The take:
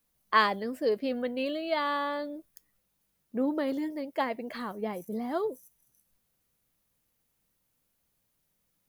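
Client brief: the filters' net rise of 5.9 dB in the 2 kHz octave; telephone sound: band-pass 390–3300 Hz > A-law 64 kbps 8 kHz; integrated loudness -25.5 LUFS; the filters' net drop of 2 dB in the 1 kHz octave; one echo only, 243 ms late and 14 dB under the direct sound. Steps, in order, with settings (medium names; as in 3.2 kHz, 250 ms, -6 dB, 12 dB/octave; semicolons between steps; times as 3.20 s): band-pass 390–3300 Hz; peaking EQ 1 kHz -4.5 dB; peaking EQ 2 kHz +9 dB; delay 243 ms -14 dB; trim +5.5 dB; A-law 64 kbps 8 kHz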